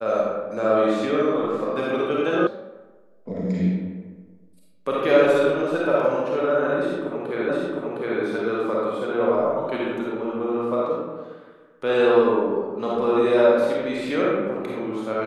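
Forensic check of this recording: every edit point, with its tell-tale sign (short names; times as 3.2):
2.47 sound cut off
7.49 repeat of the last 0.71 s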